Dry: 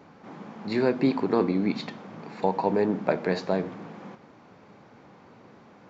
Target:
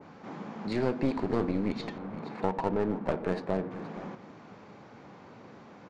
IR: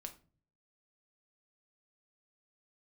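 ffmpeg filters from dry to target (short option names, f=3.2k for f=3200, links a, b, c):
-filter_complex "[0:a]asplit=2[a][b];[b]acompressor=threshold=-36dB:ratio=6,volume=1dB[c];[a][c]amix=inputs=2:normalize=0,aeval=exprs='clip(val(0),-1,0.0531)':c=same,asettb=1/sr,asplit=3[d][e][f];[d]atrim=end=1.984[g];[e]atrim=start=1.98:end=3.71,asetpts=PTS-STARTPTS,afade=t=in:d=0.004:c=qsin,afade=t=out:st=1.726:d=0.004:c=qsin,adynamicsmooth=sensitivity=4.5:basefreq=1.8k[h];[f]atrim=start=3.706[i];[g][h]acrossfade=d=0.004:c1=hsin:c2=qsin[j];[j][i]acrossfade=d=0.004:c1=qsin:c2=hsin,asplit=2[k][l];[l]aecho=0:1:472:0.178[m];[k][m]amix=inputs=2:normalize=0,aresample=22050,aresample=44100,adynamicequalizer=threshold=0.00631:dfrequency=2200:dqfactor=0.7:tfrequency=2200:tqfactor=0.7:attack=5:release=100:ratio=0.375:range=2:mode=cutabove:tftype=highshelf,volume=-5dB"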